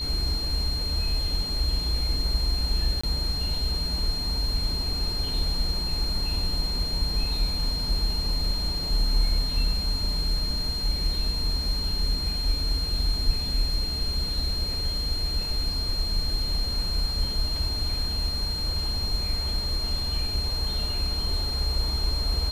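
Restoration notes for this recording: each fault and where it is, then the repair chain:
whine 4.2 kHz -29 dBFS
3.01–3.04 s: dropout 25 ms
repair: band-stop 4.2 kHz, Q 30; interpolate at 3.01 s, 25 ms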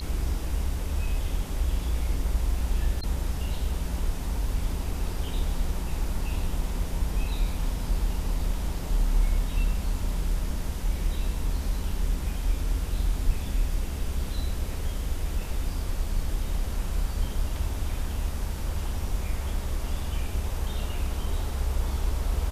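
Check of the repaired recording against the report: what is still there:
nothing left

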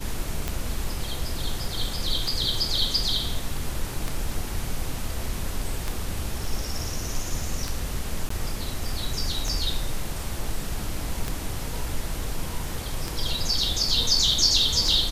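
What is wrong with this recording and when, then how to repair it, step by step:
tick 33 1/3 rpm -12 dBFS
8.29–8.30 s: dropout 14 ms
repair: de-click; interpolate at 8.29 s, 14 ms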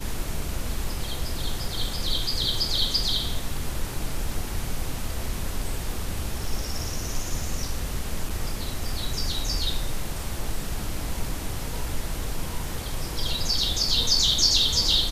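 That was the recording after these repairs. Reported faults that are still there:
nothing left

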